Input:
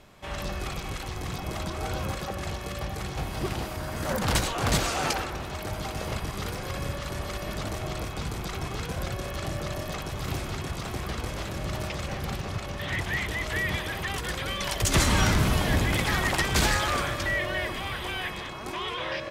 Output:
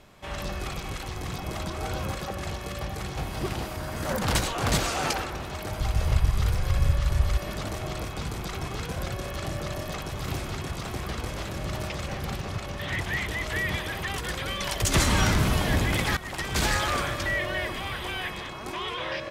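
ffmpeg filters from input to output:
-filter_complex "[0:a]asplit=3[s0][s1][s2];[s0]afade=t=out:st=5.8:d=0.02[s3];[s1]asubboost=boost=8:cutoff=91,afade=t=in:st=5.8:d=0.02,afade=t=out:st=7.36:d=0.02[s4];[s2]afade=t=in:st=7.36:d=0.02[s5];[s3][s4][s5]amix=inputs=3:normalize=0,asplit=2[s6][s7];[s6]atrim=end=16.17,asetpts=PTS-STARTPTS,afade=t=out:st=16.166:d=0.004:c=hsin:silence=0.149624[s8];[s7]atrim=start=16.17,asetpts=PTS-STARTPTS,afade=t=in:d=0.6:silence=0.149624[s9];[s8][s9]concat=n=2:v=0:a=1"

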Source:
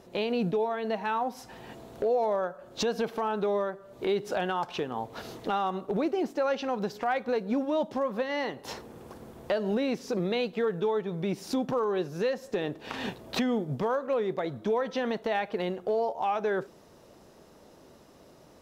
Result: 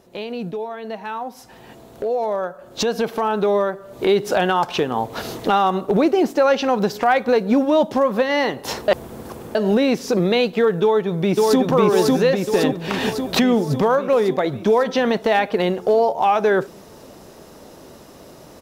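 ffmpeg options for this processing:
-filter_complex "[0:a]asplit=2[s0][s1];[s1]afade=t=in:st=10.82:d=0.01,afade=t=out:st=11.61:d=0.01,aecho=0:1:550|1100|1650|2200|2750|3300|3850|4400|4950|5500|6050:0.944061|0.61364|0.398866|0.259263|0.168521|0.109538|0.0712|0.04628|0.030082|0.0195533|0.0127096[s2];[s0][s2]amix=inputs=2:normalize=0,asplit=3[s3][s4][s5];[s3]atrim=end=8.882[s6];[s4]atrim=start=8.878:end=9.552,asetpts=PTS-STARTPTS,areverse[s7];[s5]atrim=start=9.548[s8];[s6][s7]acrossfade=d=0.004:c1=hsin:c2=hsin[s9];[s9][s8]acrossfade=d=0.004:c1=hsin:c2=hsin,dynaudnorm=f=650:g=9:m=3.98,highshelf=f=9000:g=6.5"

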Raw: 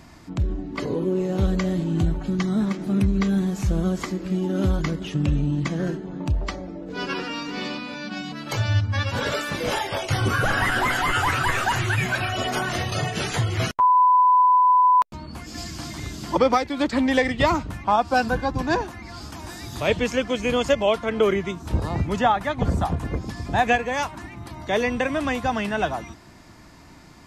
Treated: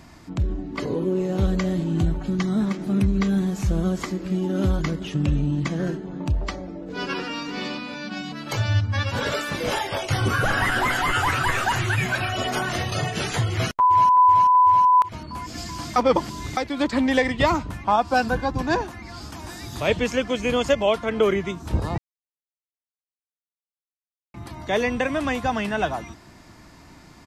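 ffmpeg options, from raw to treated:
-filter_complex "[0:a]asplit=2[s0][s1];[s1]afade=t=in:st=13.52:d=0.01,afade=t=out:st=13.94:d=0.01,aecho=0:1:380|760|1140|1520|1900|2280|2660|3040|3420|3800|4180|4560:0.281838|0.211379|0.158534|0.118901|0.0891754|0.0668815|0.0501612|0.0376209|0.0282157|0.0211617|0.0158713|0.0119035[s2];[s0][s2]amix=inputs=2:normalize=0,asplit=5[s3][s4][s5][s6][s7];[s3]atrim=end=15.962[s8];[s4]atrim=start=15.958:end=16.572,asetpts=PTS-STARTPTS,areverse[s9];[s5]atrim=start=16.568:end=21.98,asetpts=PTS-STARTPTS,afade=t=out:st=5.408:d=0.004:c=hsin[s10];[s6]atrim=start=21.98:end=24.34,asetpts=PTS-STARTPTS,volume=0[s11];[s7]atrim=start=24.34,asetpts=PTS-STARTPTS,afade=t=in:d=0.004:c=hsin[s12];[s8][s9]acrossfade=d=0.004:c1=hsin:c2=hsin[s13];[s10][s11][s12]concat=n=3:v=0:a=1[s14];[s13][s14]acrossfade=d=0.004:c1=hsin:c2=hsin"

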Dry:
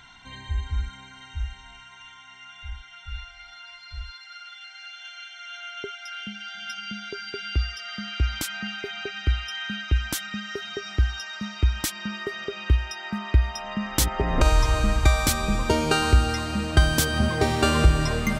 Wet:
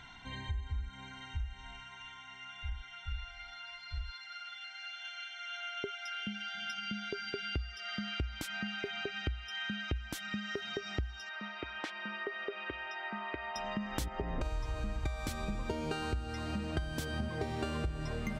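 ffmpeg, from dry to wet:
-filter_complex "[0:a]asettb=1/sr,asplit=3[s0][s1][s2];[s0]atrim=end=11.294[s3];[s1]atrim=start=11.29:end=13.56,asetpts=PTS-STARTPTS,afade=t=in:d=0.004:c=qsin,afade=t=out:st=2.266:d=0.004:c=qsin,highpass=460,lowpass=2600[s4];[s2]atrim=start=13.556[s5];[s3][s4]acrossfade=d=0.004:c1=hsin:c2=qsin[s6];[s6][s5]acrossfade=d=0.004:c1=qsin:c2=hsin,highshelf=f=4000:g=-9.5,acompressor=threshold=0.02:ratio=6,equalizer=f=1200:t=o:w=0.71:g=-3.5"

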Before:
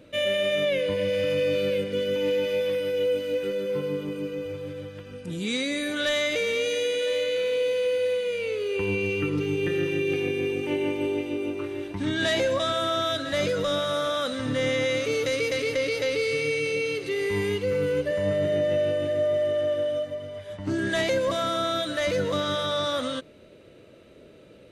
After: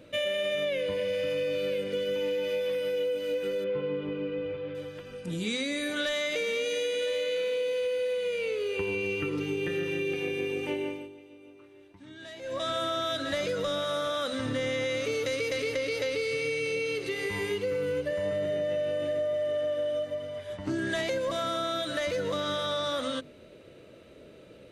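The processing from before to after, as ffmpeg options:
-filter_complex "[0:a]asettb=1/sr,asplit=3[s0][s1][s2];[s0]atrim=end=3.644[s3];[s1]atrim=start=3.64:end=4.75,asetpts=PTS-STARTPTS,afade=t=in:d=0.004:c=qsin,afade=t=out:st=1.106:d=0.004:c=qsin,lowpass=f=3400:w=0.5412,lowpass=f=3400:w=1.3066[s4];[s2]atrim=start=4.746[s5];[s3][s4]acrossfade=d=0.004:c1=hsin:c2=qsin[s6];[s6][s5]acrossfade=d=0.004:c1=qsin:c2=hsin,asplit=3[s7][s8][s9];[s7]atrim=end=11.09,asetpts=PTS-STARTPTS,afade=t=out:st=10.67:d=0.42:silence=0.1[s10];[s8]atrim=start=11.09:end=12.41,asetpts=PTS-STARTPTS,volume=0.1[s11];[s9]atrim=start=12.41,asetpts=PTS-STARTPTS,afade=t=in:d=0.42:silence=0.1[s12];[s10][s11][s12]concat=n=3:v=0:a=1,bandreject=f=50:t=h:w=6,bandreject=f=100:t=h:w=6,bandreject=f=150:t=h:w=6,bandreject=f=200:t=h:w=6,bandreject=f=250:t=h:w=6,bandreject=f=300:t=h:w=6,bandreject=f=350:t=h:w=6,bandreject=f=400:t=h:w=6,acompressor=threshold=0.0447:ratio=6"

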